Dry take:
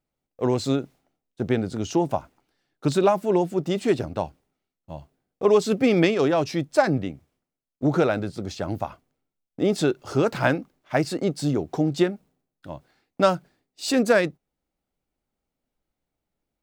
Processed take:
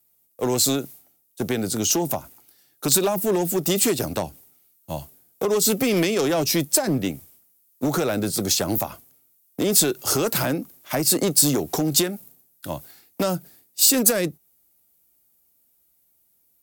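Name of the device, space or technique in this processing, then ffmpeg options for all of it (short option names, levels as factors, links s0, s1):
FM broadcast chain: -filter_complex "[0:a]highpass=49,dynaudnorm=f=370:g=17:m=3.76,acrossover=split=140|520[s0][s1][s2];[s0]acompressor=threshold=0.01:ratio=4[s3];[s1]acompressor=threshold=0.0794:ratio=4[s4];[s2]acompressor=threshold=0.0355:ratio=4[s5];[s3][s4][s5]amix=inputs=3:normalize=0,aemphasis=mode=production:type=50fm,alimiter=limit=0.168:level=0:latency=1:release=127,asoftclip=type=hard:threshold=0.106,lowpass=f=15000:w=0.5412,lowpass=f=15000:w=1.3066,aemphasis=mode=production:type=50fm,volume=1.5"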